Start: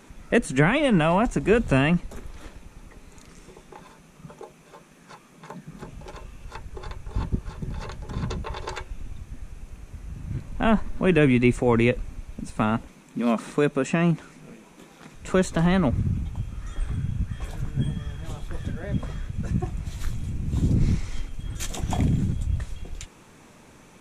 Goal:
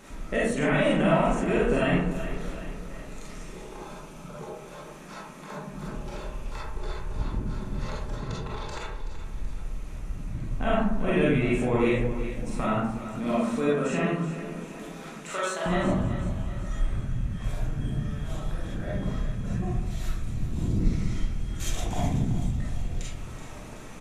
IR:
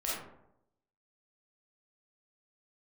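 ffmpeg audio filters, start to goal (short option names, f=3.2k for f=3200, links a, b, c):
-filter_complex "[0:a]asettb=1/sr,asplit=3[a][b][c];[a]atrim=end=3.624[d];[b]atrim=start=3.62:end=4.35,asetpts=PTS-STARTPTS,afade=t=in:d=0.004:c=qsin,afade=t=out:st=0.726:d=0.004:c=qsin,bandreject=f=1.9k:w=6.2[e];[c]atrim=start=4.346[f];[d][e]acrossfade=d=0.004:c1=hsin:c2=qsin[g];[g][f]acrossfade=d=0.004:c1=qsin:c2=hsin,asettb=1/sr,asplit=3[h][i][j];[h]atrim=end=15.134[k];[i]atrim=start=15.13:end=15.66,asetpts=PTS-STARTPTS,afade=t=in:d=0.004:c=qsin,afade=t=out:st=0.526:d=0.004:c=qsin,highpass=720[l];[j]atrim=start=15.656[m];[k][l]acrossfade=d=0.004:c1=hsin:c2=qsin[n];[n][m]acrossfade=d=0.004:c1=qsin:c2=hsin,acompressor=threshold=-46dB:ratio=1.5,asplit=3[o][p][q];[o]afade=t=out:st=8.14:d=0.02[r];[p]tremolo=f=26:d=0.824,afade=t=in:st=8.14:d=0.02,afade=t=out:st=9.19:d=0.02[s];[q]afade=t=in:st=9.19:d=0.02[t];[r][s][t]amix=inputs=3:normalize=0,aecho=1:1:378|756|1134|1512|1890:0.237|0.121|0.0617|0.0315|0.016[u];[1:a]atrim=start_sample=2205[v];[u][v]afir=irnorm=-1:irlink=0,volume=2.5dB"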